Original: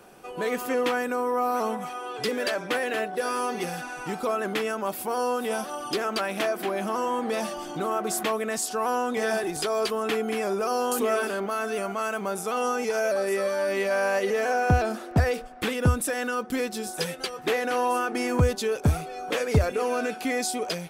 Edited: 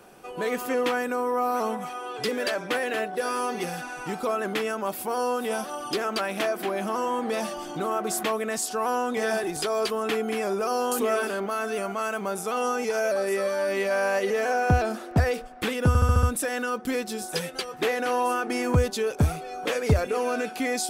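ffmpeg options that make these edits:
-filter_complex "[0:a]asplit=6[a][b][c][d][e][f];[a]atrim=end=15.952[g];[b]atrim=start=15.878:end=15.952[h];[c]atrim=start=15.878:end=15.952[i];[d]atrim=start=15.878:end=15.952[j];[e]atrim=start=15.878:end=15.952[k];[f]atrim=start=15.878[l];[g][h]acrossfade=d=0.004:c1=hsin:c2=hsin[m];[m][i]acrossfade=d=0.004:c1=hsin:c2=hsin[n];[n][j]acrossfade=d=0.004:c1=hsin:c2=hsin[o];[o][k]acrossfade=d=0.004:c1=hsin:c2=hsin[p];[p][l]acrossfade=d=0.004:c1=hsin:c2=hsin"

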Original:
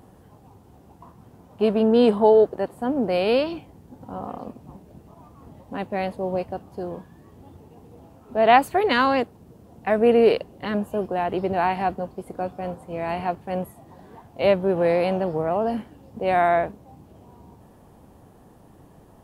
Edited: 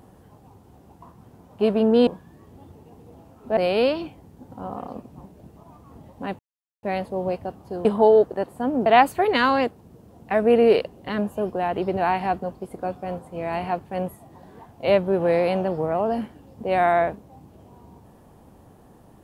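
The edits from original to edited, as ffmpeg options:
-filter_complex "[0:a]asplit=6[a][b][c][d][e][f];[a]atrim=end=2.072[g];[b]atrim=start=6.918:end=8.422[h];[c]atrim=start=3.078:end=5.9,asetpts=PTS-STARTPTS,afade=t=out:st=2.818:d=0.004:c=hsin,apad=pad_dur=0.44[i];[d]atrim=start=5.9:end=6.922,asetpts=PTS-STARTPTS,afade=t=in:d=0.004:c=hsin[j];[e]atrim=start=2.068:end=3.082[k];[f]atrim=start=8.418[l];[g][h]acrossfade=d=0.004:c1=hsin:c2=hsin[m];[i][j]concat=n=2:v=0:a=1[n];[m][n]acrossfade=d=0.004:c1=hsin:c2=hsin[o];[o][k]acrossfade=d=0.004:c1=hsin:c2=hsin[p];[p][l]acrossfade=d=0.004:c1=hsin:c2=hsin"

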